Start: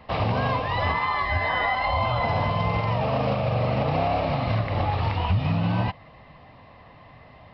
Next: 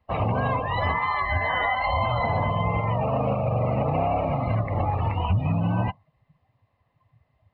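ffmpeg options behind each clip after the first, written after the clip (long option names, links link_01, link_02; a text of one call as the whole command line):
ffmpeg -i in.wav -af "afftdn=noise_reduction=24:noise_floor=-32" out.wav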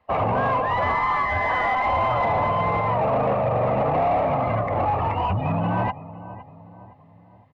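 ffmpeg -i in.wav -filter_complex "[0:a]asplit=2[link_01][link_02];[link_02]adelay=513,lowpass=frequency=1200:poles=1,volume=-17dB,asplit=2[link_03][link_04];[link_04]adelay=513,lowpass=frequency=1200:poles=1,volume=0.49,asplit=2[link_05][link_06];[link_06]adelay=513,lowpass=frequency=1200:poles=1,volume=0.49,asplit=2[link_07][link_08];[link_08]adelay=513,lowpass=frequency=1200:poles=1,volume=0.49[link_09];[link_01][link_03][link_05][link_07][link_09]amix=inputs=5:normalize=0,asplit=2[link_10][link_11];[link_11]highpass=frequency=720:poles=1,volume=18dB,asoftclip=type=tanh:threshold=-12.5dB[link_12];[link_10][link_12]amix=inputs=2:normalize=0,lowpass=frequency=1400:poles=1,volume=-6dB,acrossover=split=2800[link_13][link_14];[link_14]acompressor=threshold=-50dB:ratio=4:attack=1:release=60[link_15];[link_13][link_15]amix=inputs=2:normalize=0" out.wav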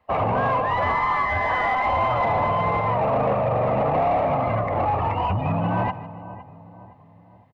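ffmpeg -i in.wav -af "aecho=1:1:155|310|465:0.15|0.0494|0.0163" out.wav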